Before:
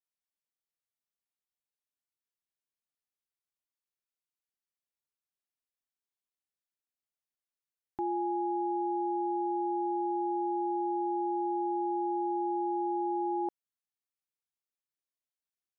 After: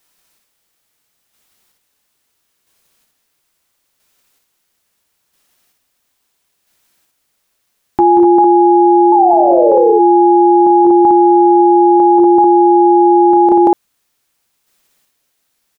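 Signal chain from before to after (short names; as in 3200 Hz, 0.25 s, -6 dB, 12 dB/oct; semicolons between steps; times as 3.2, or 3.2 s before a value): chopper 0.75 Hz, depth 60%, duty 15%; 9.12–9.75 painted sound fall 420–870 Hz -32 dBFS; loudspeakers at several distances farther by 12 m -6 dB, 63 m 0 dB, 83 m -3 dB; maximiser +33 dB; 11.09–11.61 fast leveller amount 100%; gain -1 dB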